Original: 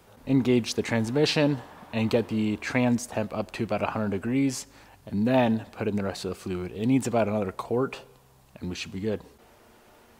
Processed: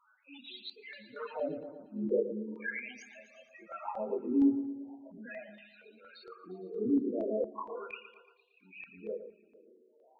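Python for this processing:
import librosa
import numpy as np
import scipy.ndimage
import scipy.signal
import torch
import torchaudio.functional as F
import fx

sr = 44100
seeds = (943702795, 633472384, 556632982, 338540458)

p1 = fx.frame_reverse(x, sr, frame_ms=65.0)
p2 = (np.mod(10.0 ** (20.0 / 20.0) * p1 + 1.0, 2.0) - 1.0) / 10.0 ** (20.0 / 20.0)
p3 = p1 + F.gain(torch.from_numpy(p2), -4.0).numpy()
p4 = fx.wah_lfo(p3, sr, hz=0.39, low_hz=330.0, high_hz=3900.0, q=2.3)
p5 = fx.spec_topn(p4, sr, count=8)
p6 = p5 + fx.echo_feedback(p5, sr, ms=115, feedback_pct=58, wet_db=-11.0, dry=0)
y = fx.filter_held_notch(p6, sr, hz=4.3, low_hz=500.0, high_hz=5400.0)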